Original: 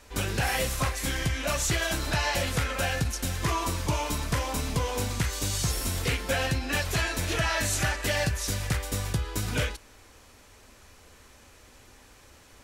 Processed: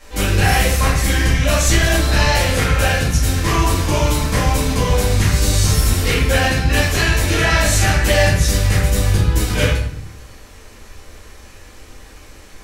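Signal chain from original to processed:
rectangular room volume 110 cubic metres, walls mixed, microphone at 2.2 metres
level +2.5 dB

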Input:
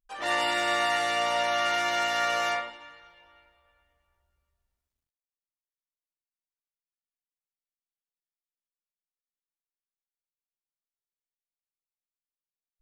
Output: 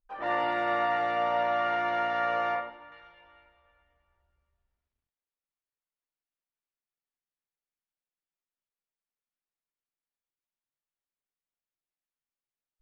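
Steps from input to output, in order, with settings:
low-pass filter 1,400 Hz 12 dB per octave, from 0:02.92 2,700 Hz
level +1 dB

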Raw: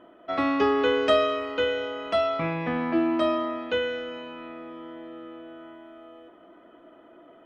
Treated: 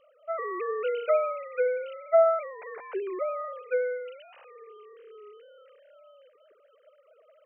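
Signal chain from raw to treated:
three sine waves on the formant tracks
hum removal 236.2 Hz, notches 2
level −3 dB

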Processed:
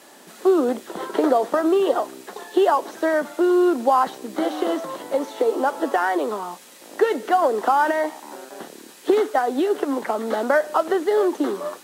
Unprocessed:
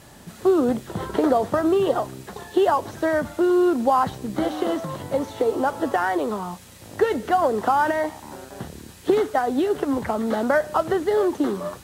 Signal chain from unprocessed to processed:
high-pass filter 270 Hz 24 dB per octave
level +1.5 dB

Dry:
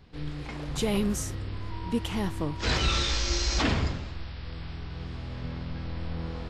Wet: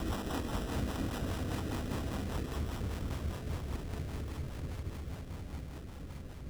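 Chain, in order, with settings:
extreme stretch with random phases 16×, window 0.50 s, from 0:03.63
decimation without filtering 20×
rotating-speaker cabinet horn 5 Hz
level −9 dB

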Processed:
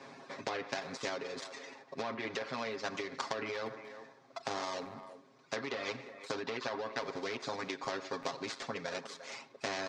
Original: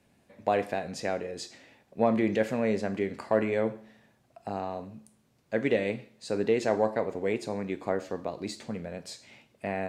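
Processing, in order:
gap after every zero crossing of 0.11 ms
reverb reduction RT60 1.5 s
treble cut that deepens with the level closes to 2,700 Hz, closed at −23.5 dBFS
comb filter 7.4 ms, depth 97%
brickwall limiter −21.5 dBFS, peak gain reduction 13 dB
downward compressor, threshold −34 dBFS, peak gain reduction 8.5 dB
loudspeaker in its box 290–5,700 Hz, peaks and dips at 440 Hz +3 dB, 1,100 Hz +8 dB, 2,900 Hz −8 dB
far-end echo of a speakerphone 350 ms, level −22 dB
every bin compressed towards the loudest bin 2 to 1
level +3.5 dB

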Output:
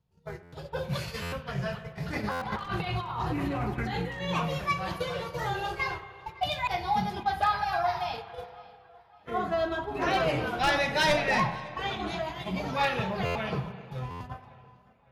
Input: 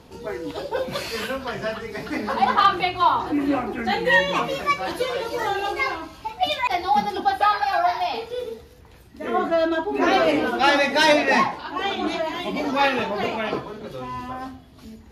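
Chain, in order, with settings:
wavefolder on the positive side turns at −10 dBFS
low shelf with overshoot 200 Hz +9 dB, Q 3
noise gate −28 dBFS, range −27 dB
0:02.08–0:04.29: compressor whose output falls as the input rises −26 dBFS, ratio −1
tape delay 556 ms, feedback 44%, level −20 dB, low-pass 3,900 Hz
spring reverb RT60 2 s, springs 32/53 ms, chirp 65 ms, DRR 11 dB
buffer that repeats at 0:00.42/0:01.22/0:02.31/0:13.25/0:14.10, samples 512, times 8
level −7 dB

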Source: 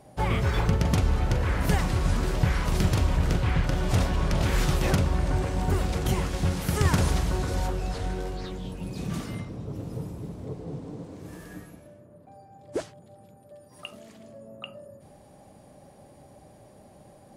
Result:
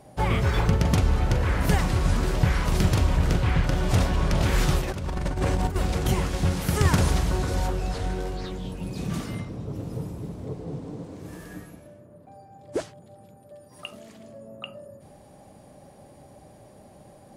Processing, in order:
0:04.81–0:05.76: compressor whose output falls as the input rises −27 dBFS, ratio −0.5
level +2 dB

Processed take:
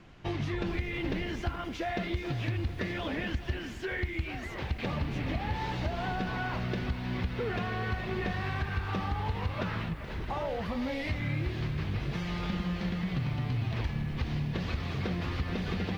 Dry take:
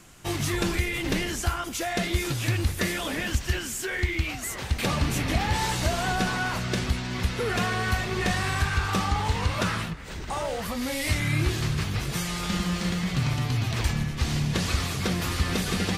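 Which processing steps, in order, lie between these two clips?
parametric band 1,300 Hz −3.5 dB 0.64 octaves
downward compressor, threshold −28 dBFS, peak gain reduction 9 dB
high-frequency loss of the air 280 metres
feedback echo at a low word length 424 ms, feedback 35%, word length 9 bits, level −13 dB

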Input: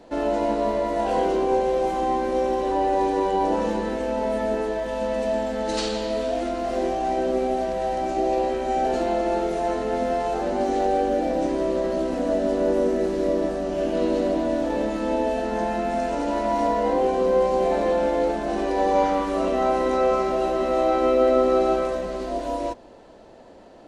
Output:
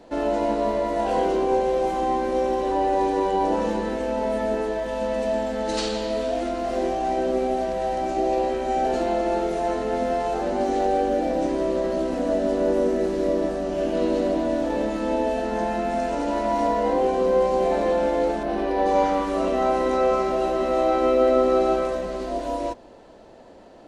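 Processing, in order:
0:18.43–0:18.86: parametric band 7,300 Hz −12.5 dB 0.87 octaves

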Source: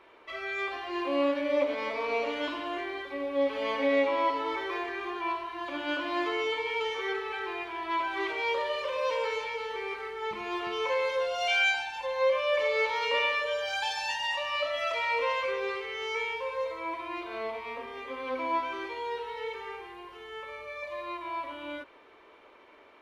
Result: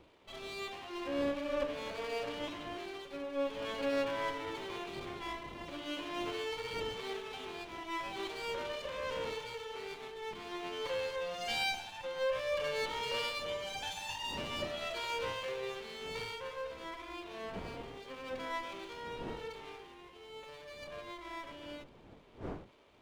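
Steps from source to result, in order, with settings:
lower of the sound and its delayed copy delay 0.3 ms
wind on the microphone 460 Hz −47 dBFS
level −7 dB

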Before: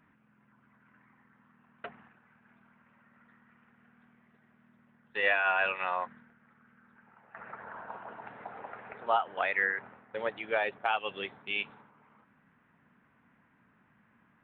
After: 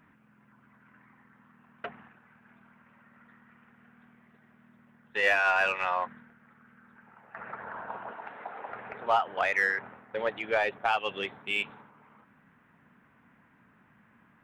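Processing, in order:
0:08.11–0:08.69: parametric band 94 Hz −13.5 dB 2.5 octaves
in parallel at −3.5 dB: soft clipping −28.5 dBFS, distortion −8 dB

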